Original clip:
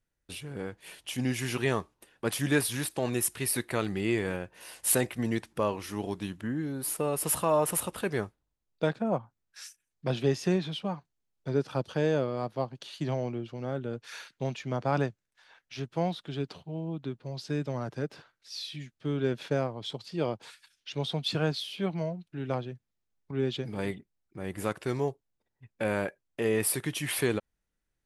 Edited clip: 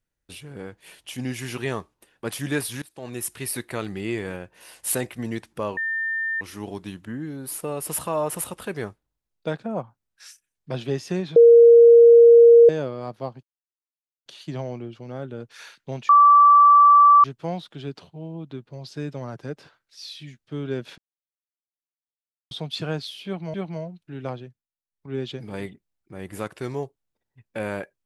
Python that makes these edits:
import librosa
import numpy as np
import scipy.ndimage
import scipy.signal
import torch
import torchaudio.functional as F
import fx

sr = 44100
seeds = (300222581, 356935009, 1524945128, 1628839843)

y = fx.edit(x, sr, fx.fade_in_from(start_s=2.82, length_s=0.51, floor_db=-24.0),
    fx.insert_tone(at_s=5.77, length_s=0.64, hz=1800.0, db=-23.0),
    fx.bleep(start_s=10.72, length_s=1.33, hz=468.0, db=-7.0),
    fx.insert_silence(at_s=12.79, length_s=0.83),
    fx.bleep(start_s=14.62, length_s=1.15, hz=1160.0, db=-9.0),
    fx.silence(start_s=19.51, length_s=1.53),
    fx.repeat(start_s=21.79, length_s=0.28, count=2),
    fx.fade_down_up(start_s=22.66, length_s=0.74, db=-19.0, fade_s=0.25), tone=tone)